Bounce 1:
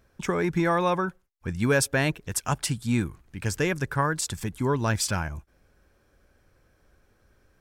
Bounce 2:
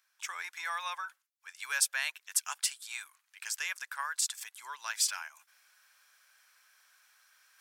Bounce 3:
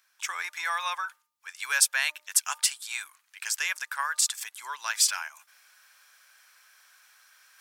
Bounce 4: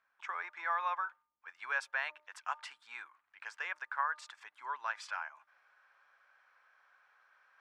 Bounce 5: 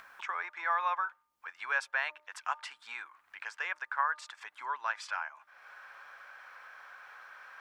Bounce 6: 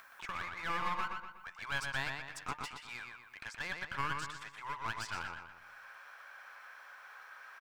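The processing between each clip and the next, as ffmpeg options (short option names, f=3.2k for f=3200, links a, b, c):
-af "highpass=f=920:w=0.5412,highpass=f=920:w=1.3066,tiltshelf=f=1.3k:g=-8,areverse,acompressor=mode=upward:threshold=-46dB:ratio=2.5,areverse,volume=-8dB"
-af "bandreject=f=302.7:t=h:w=4,bandreject=f=605.4:t=h:w=4,bandreject=f=908.1:t=h:w=4,bandreject=f=1.2108k:t=h:w=4,volume=6.5dB"
-af "lowpass=1.2k"
-af "acompressor=mode=upward:threshold=-42dB:ratio=2.5,volume=3.5dB"
-filter_complex "[0:a]highshelf=f=6k:g=9,aeval=exprs='clip(val(0),-1,0.0106)':c=same,asplit=2[a][b];[b]adelay=122,lowpass=f=4.8k:p=1,volume=-4dB,asplit=2[c][d];[d]adelay=122,lowpass=f=4.8k:p=1,volume=0.46,asplit=2[e][f];[f]adelay=122,lowpass=f=4.8k:p=1,volume=0.46,asplit=2[g][h];[h]adelay=122,lowpass=f=4.8k:p=1,volume=0.46,asplit=2[i][j];[j]adelay=122,lowpass=f=4.8k:p=1,volume=0.46,asplit=2[k][l];[l]adelay=122,lowpass=f=4.8k:p=1,volume=0.46[m];[c][e][g][i][k][m]amix=inputs=6:normalize=0[n];[a][n]amix=inputs=2:normalize=0,volume=-3.5dB"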